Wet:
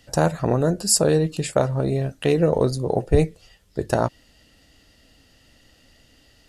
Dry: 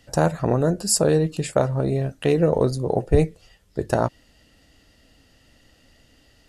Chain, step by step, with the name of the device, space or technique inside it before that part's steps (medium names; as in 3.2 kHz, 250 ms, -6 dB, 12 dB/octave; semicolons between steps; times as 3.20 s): presence and air boost (peaking EQ 4 kHz +2.5 dB 1.5 oct; treble shelf 10 kHz +3.5 dB)